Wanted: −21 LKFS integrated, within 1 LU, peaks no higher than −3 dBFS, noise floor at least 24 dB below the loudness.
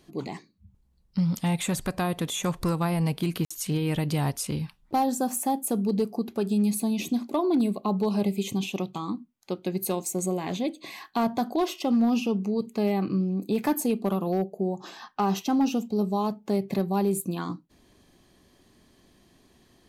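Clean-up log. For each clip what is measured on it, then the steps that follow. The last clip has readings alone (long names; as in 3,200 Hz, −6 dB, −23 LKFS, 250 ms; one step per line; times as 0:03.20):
share of clipped samples 0.4%; peaks flattened at −17.5 dBFS; number of dropouts 1; longest dropout 55 ms; integrated loudness −27.5 LKFS; sample peak −17.5 dBFS; target loudness −21.0 LKFS
→ clipped peaks rebuilt −17.5 dBFS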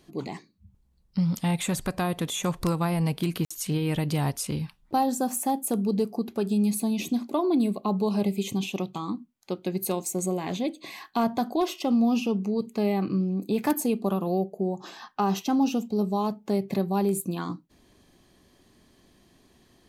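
share of clipped samples 0.0%; number of dropouts 1; longest dropout 55 ms
→ repair the gap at 0:03.45, 55 ms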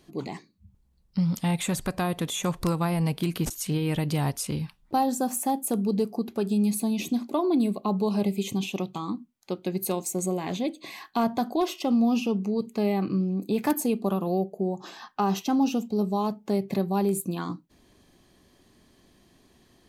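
number of dropouts 0; integrated loudness −27.5 LKFS; sample peak −8.5 dBFS; target loudness −21.0 LKFS
→ level +6.5 dB
brickwall limiter −3 dBFS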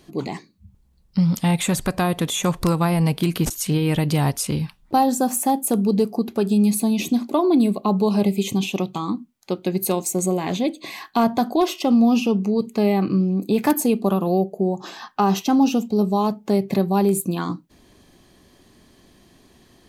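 integrated loudness −21.0 LKFS; sample peak −3.0 dBFS; background noise floor −57 dBFS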